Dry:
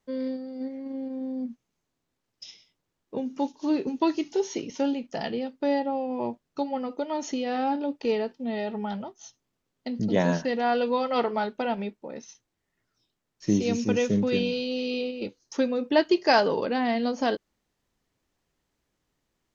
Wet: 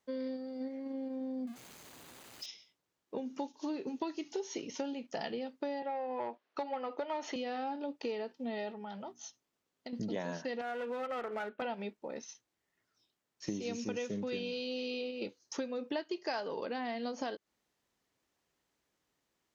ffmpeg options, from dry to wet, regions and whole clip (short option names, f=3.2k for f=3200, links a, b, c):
-filter_complex "[0:a]asettb=1/sr,asplit=3[a][b][c];[a]atrim=end=1.474[d];[b]atrim=start=1.47:end=2.46,asetpts=PTS-STARTPTS,afade=t=in:d=0.004:c=qsin,afade=t=out:st=0.986:d=0.004:c=qsin,aeval=exprs='val(0)+0.5*0.00631*sgn(val(0))':c=same,bandreject=f=5.5k:w=10[e];[c]atrim=start=2.456[f];[d][e]acrossfade=d=0.004:c1=hsin:c2=qsin[g];[g][f]acrossfade=d=0.004:c1=qsin:c2=hsin,asettb=1/sr,asplit=3[h][i][j];[h]atrim=end=5.824[k];[i]atrim=start=5.82:end=7.36,asetpts=PTS-STARTPTS,afade=t=in:d=0.004:c=qsin,afade=t=out:st=1.536:d=0.004:c=qsin,highpass=280,lowpass=4.4k,asplit=2[l][m];[m]highpass=f=720:p=1,volume=14dB,asoftclip=type=tanh:threshold=-17dB[n];[l][n]amix=inputs=2:normalize=0,lowpass=f=2.7k:p=1,volume=-6dB[o];[j]atrim=start=7.356[p];[k][o]acrossfade=d=0.004:c1=hsin:c2=qsin[q];[q][p]acrossfade=d=0.004:c1=qsin:c2=hsin,asettb=1/sr,asplit=3[r][s][t];[r]atrim=end=8.714[u];[s]atrim=start=8.71:end=9.93,asetpts=PTS-STARTPTS,afade=t=in:d=0.004:c=qsin,afade=t=out:st=1.216:d=0.004:c=qsin,bandreject=f=60:t=h:w=6,bandreject=f=120:t=h:w=6,bandreject=f=180:t=h:w=6,bandreject=f=240:t=h:w=6,bandreject=f=300:t=h:w=6,acompressor=threshold=-36dB:ratio=10:attack=3.2:release=140:knee=1:detection=peak[v];[t]atrim=start=9.926[w];[u][v]acrossfade=d=0.004:c1=hsin:c2=qsin[x];[x][w]acrossfade=d=0.004:c1=qsin:c2=hsin,asettb=1/sr,asplit=3[y][z][aa];[y]atrim=end=10.614[ab];[z]atrim=start=10.61:end=11.62,asetpts=PTS-STARTPTS,afade=t=in:d=0.004:c=qsin,afade=t=out:st=1.006:d=0.004:c=qsin,highpass=230,equalizer=f=320:t=q:w=4:g=-4,equalizer=f=970:t=q:w=4:g=-9,equalizer=f=1.4k:t=q:w=4:g=5,lowpass=f=2.7k:w=0.5412,lowpass=f=2.7k:w=1.3066,acompressor=threshold=-29dB:ratio=2:attack=3.2:release=140:knee=1:detection=peak,aeval=exprs='clip(val(0),-1,0.0282)':c=same[ac];[aa]atrim=start=11.616[ad];[ab][ac]acrossfade=d=0.004:c1=hsin:c2=qsin[ae];[ae][ad]acrossfade=d=0.004:c1=qsin:c2=hsin,highpass=40,lowshelf=f=200:g=-10.5,acompressor=threshold=-33dB:ratio=6,volume=-1.5dB"